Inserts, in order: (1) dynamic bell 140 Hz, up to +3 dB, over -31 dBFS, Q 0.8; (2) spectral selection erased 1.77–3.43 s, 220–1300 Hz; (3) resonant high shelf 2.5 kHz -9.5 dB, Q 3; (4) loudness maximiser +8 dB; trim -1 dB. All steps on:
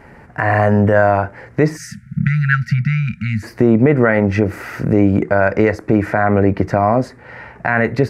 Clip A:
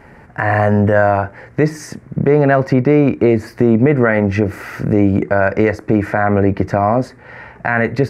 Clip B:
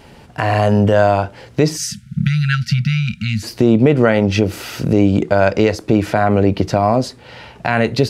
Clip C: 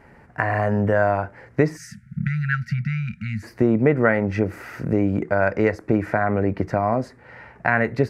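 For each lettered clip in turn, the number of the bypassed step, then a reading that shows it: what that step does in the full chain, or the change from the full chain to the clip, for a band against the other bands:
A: 2, momentary loudness spread change -3 LU; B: 3, momentary loudness spread change -2 LU; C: 4, crest factor change +5.5 dB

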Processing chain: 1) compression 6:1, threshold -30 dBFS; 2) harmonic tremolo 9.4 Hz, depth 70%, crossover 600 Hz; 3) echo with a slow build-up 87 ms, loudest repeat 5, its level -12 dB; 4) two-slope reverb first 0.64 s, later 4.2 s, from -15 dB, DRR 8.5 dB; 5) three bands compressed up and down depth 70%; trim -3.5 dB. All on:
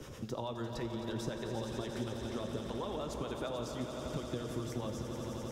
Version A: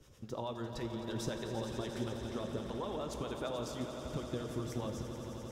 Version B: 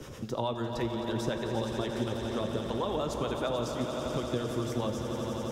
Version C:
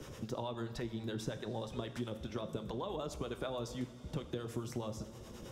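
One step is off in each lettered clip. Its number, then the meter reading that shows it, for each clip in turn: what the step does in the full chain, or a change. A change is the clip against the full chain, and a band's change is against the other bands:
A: 5, momentary loudness spread change +1 LU; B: 1, mean gain reduction 4.5 dB; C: 3, momentary loudness spread change +2 LU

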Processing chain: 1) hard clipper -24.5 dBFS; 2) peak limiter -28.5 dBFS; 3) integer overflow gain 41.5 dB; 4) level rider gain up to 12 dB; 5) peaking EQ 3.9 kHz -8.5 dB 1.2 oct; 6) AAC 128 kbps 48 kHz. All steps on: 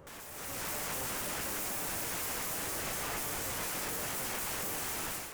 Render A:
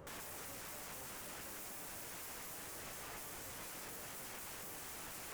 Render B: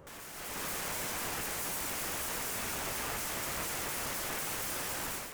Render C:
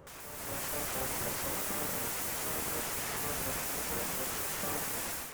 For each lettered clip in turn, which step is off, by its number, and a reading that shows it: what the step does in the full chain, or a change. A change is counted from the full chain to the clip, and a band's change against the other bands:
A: 4, momentary loudness spread change -1 LU; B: 1, distortion -15 dB; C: 2, mean gain reduction 3.5 dB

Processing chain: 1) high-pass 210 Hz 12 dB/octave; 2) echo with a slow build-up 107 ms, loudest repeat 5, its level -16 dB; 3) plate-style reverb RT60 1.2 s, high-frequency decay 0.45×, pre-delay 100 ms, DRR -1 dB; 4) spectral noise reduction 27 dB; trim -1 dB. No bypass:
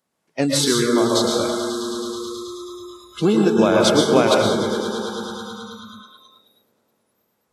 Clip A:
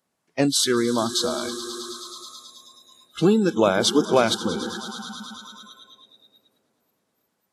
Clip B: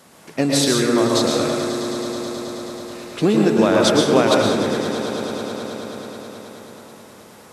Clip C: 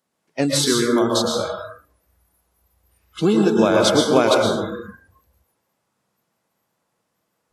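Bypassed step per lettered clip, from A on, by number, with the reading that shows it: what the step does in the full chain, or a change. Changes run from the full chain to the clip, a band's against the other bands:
3, crest factor change +2.0 dB; 4, momentary loudness spread change -2 LU; 2, momentary loudness spread change -6 LU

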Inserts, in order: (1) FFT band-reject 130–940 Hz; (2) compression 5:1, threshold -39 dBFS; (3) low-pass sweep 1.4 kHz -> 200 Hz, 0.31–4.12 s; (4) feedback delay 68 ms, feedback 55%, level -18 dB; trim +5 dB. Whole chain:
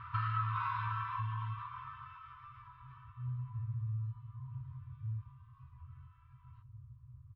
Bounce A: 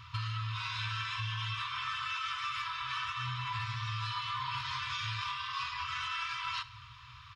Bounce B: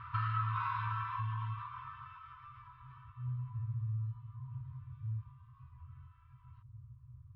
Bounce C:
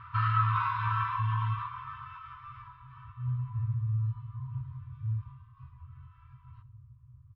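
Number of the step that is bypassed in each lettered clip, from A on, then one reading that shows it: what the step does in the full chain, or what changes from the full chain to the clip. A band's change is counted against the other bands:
3, momentary loudness spread change -19 LU; 4, echo-to-direct -16.5 dB to none; 2, momentary loudness spread change +2 LU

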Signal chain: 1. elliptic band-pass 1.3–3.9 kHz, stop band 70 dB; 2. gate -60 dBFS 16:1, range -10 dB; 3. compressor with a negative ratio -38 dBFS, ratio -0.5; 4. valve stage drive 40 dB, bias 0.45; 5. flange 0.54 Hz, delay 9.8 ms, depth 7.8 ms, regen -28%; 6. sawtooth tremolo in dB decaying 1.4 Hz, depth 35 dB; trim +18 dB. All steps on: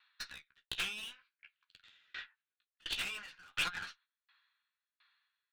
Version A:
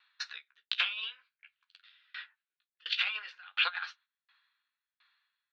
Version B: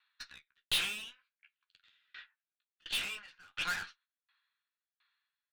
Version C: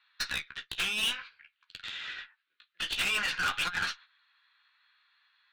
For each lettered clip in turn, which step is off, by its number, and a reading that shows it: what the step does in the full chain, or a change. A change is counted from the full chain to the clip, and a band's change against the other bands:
4, crest factor change +5.5 dB; 3, momentary loudness spread change +9 LU; 6, momentary loudness spread change +3 LU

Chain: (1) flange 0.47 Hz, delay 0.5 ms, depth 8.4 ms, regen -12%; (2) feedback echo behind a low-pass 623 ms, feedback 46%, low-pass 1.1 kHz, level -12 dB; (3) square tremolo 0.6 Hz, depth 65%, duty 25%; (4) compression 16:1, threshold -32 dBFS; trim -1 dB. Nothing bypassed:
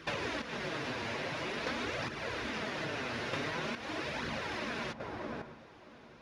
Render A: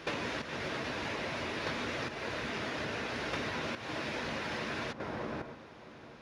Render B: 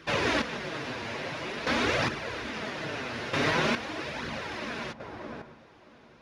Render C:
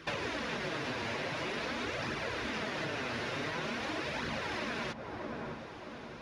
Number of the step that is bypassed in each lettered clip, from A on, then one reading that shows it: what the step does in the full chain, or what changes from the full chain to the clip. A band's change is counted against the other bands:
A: 1, momentary loudness spread change -2 LU; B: 4, mean gain reduction 3.5 dB; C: 3, momentary loudness spread change -2 LU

